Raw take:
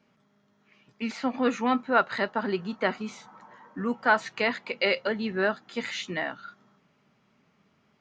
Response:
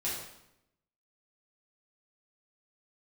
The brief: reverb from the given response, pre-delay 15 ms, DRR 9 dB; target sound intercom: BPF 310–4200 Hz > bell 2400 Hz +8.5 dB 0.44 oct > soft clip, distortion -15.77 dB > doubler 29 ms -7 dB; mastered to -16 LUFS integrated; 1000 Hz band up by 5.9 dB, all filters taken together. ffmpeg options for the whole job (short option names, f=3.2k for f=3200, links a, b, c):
-filter_complex "[0:a]equalizer=f=1k:t=o:g=7.5,asplit=2[a][b];[1:a]atrim=start_sample=2205,adelay=15[c];[b][c]afir=irnorm=-1:irlink=0,volume=-13.5dB[d];[a][d]amix=inputs=2:normalize=0,highpass=310,lowpass=4.2k,equalizer=f=2.4k:t=o:w=0.44:g=8.5,asoftclip=threshold=-11dB,asplit=2[e][f];[f]adelay=29,volume=-7dB[g];[e][g]amix=inputs=2:normalize=0,volume=8.5dB"